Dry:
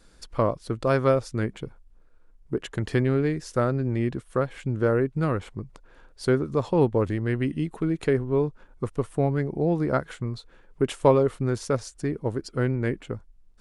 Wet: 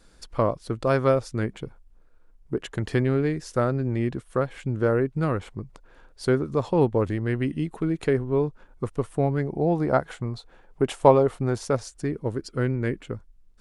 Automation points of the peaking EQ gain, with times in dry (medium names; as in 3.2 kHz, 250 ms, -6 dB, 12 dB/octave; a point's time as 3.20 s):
peaking EQ 760 Hz 0.6 oct
9.33 s +1.5 dB
9.88 s +8.5 dB
11.52 s +8.5 dB
12.25 s -3 dB